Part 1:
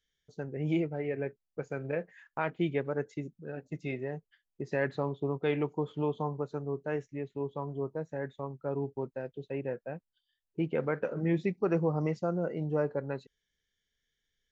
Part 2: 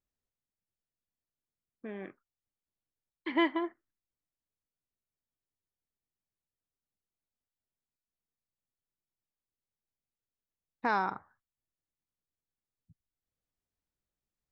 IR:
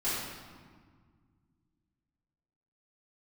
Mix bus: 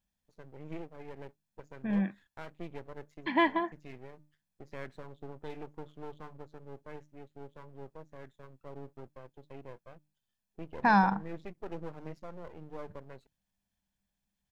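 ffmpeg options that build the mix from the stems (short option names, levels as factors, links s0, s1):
-filter_complex "[0:a]bandreject=f=50:t=h:w=6,bandreject=f=100:t=h:w=6,bandreject=f=150:t=h:w=6,aeval=exprs='max(val(0),0)':c=same,volume=0.376[s0];[1:a]equalizer=f=200:w=7.2:g=15,aecho=1:1:1.2:0.65,volume=1.33[s1];[s0][s1]amix=inputs=2:normalize=0"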